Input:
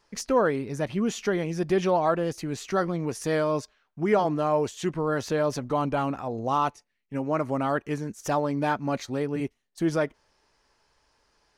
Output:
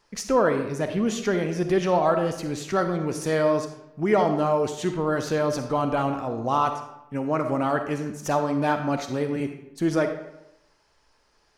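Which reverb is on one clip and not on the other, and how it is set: algorithmic reverb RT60 0.87 s, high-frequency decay 0.7×, pre-delay 10 ms, DRR 6.5 dB; trim +1.5 dB

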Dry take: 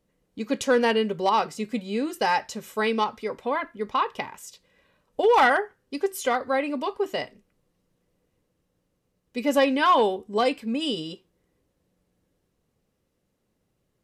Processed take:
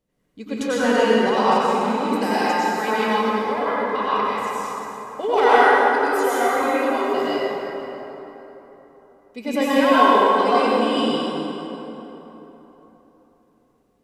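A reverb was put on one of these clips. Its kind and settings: plate-style reverb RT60 3.8 s, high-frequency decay 0.55×, pre-delay 80 ms, DRR -10 dB; trim -5 dB

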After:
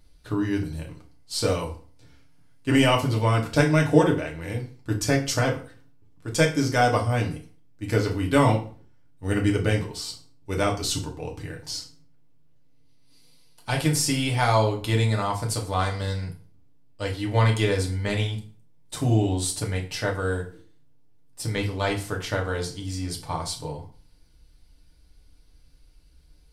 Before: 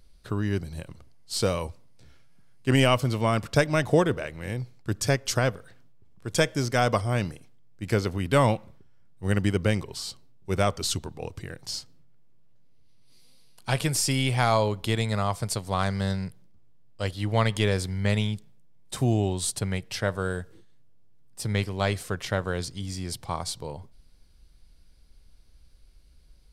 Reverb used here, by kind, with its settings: FDN reverb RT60 0.4 s, low-frequency decay 1.1×, high-frequency decay 0.85×, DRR -1 dB; trim -2 dB

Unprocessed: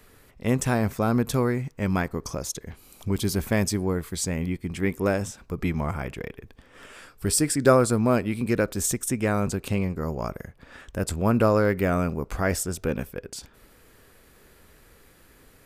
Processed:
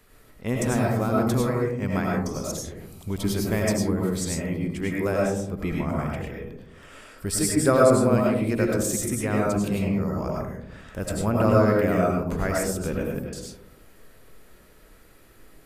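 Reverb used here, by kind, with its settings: algorithmic reverb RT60 0.74 s, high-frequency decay 0.25×, pre-delay 60 ms, DRR -2.5 dB; trim -4 dB

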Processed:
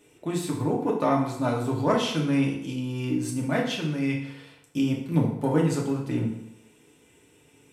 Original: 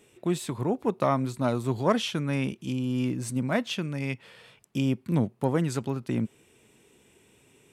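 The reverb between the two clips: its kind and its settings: FDN reverb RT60 0.79 s, low-frequency decay 0.95×, high-frequency decay 0.8×, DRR -2 dB; trim -2.5 dB

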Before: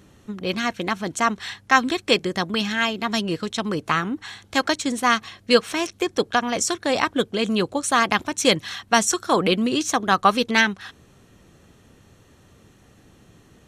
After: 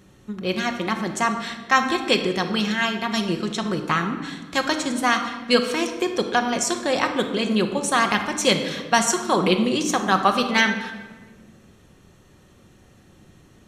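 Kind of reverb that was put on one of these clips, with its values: simulated room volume 1200 m³, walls mixed, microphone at 1 m; trim -1.5 dB

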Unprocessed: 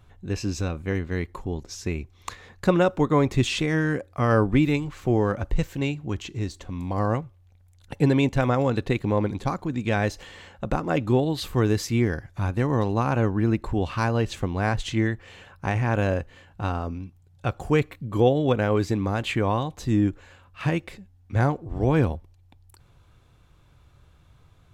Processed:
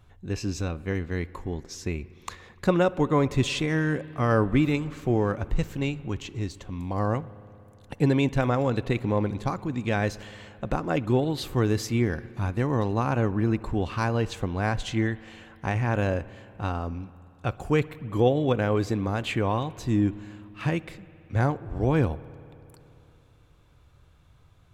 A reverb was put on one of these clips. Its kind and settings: spring tank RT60 3 s, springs 58 ms, chirp 60 ms, DRR 18 dB; trim -2 dB

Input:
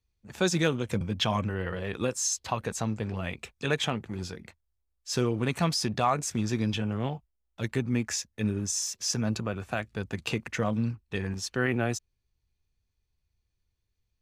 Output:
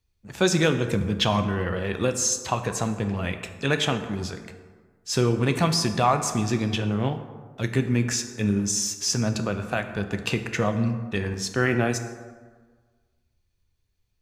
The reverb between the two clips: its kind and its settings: plate-style reverb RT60 1.5 s, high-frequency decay 0.5×, DRR 7.5 dB; trim +4.5 dB

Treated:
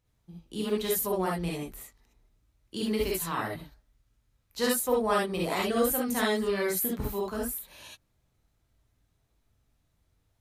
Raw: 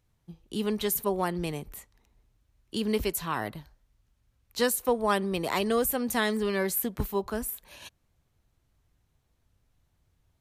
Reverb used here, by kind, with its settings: gated-style reverb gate 90 ms rising, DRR -3 dB; trim -5 dB

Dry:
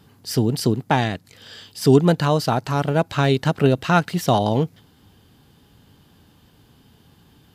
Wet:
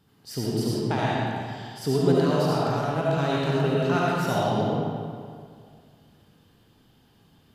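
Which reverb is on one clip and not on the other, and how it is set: algorithmic reverb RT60 2.1 s, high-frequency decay 0.7×, pre-delay 30 ms, DRR -6 dB; trim -11.5 dB

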